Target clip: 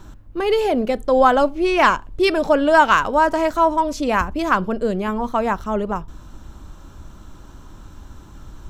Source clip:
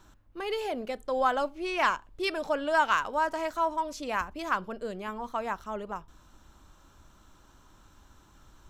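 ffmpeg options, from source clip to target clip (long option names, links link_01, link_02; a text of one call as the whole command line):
ffmpeg -i in.wav -af "lowshelf=frequency=490:gain=10,volume=9dB" out.wav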